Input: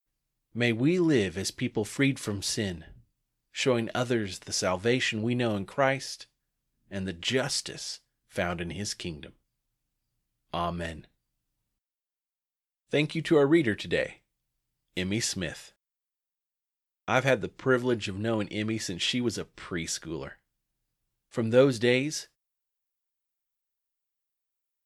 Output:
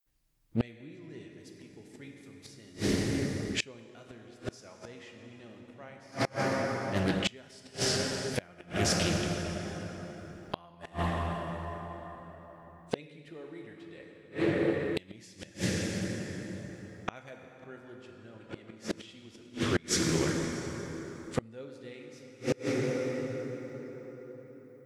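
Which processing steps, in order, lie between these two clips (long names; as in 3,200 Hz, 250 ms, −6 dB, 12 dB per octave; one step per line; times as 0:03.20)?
low-shelf EQ 81 Hz +3 dB
dense smooth reverb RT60 4.9 s, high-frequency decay 0.55×, DRR 0.5 dB
gate with flip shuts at −19 dBFS, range −29 dB
highs frequency-modulated by the lows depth 0.31 ms
level +4 dB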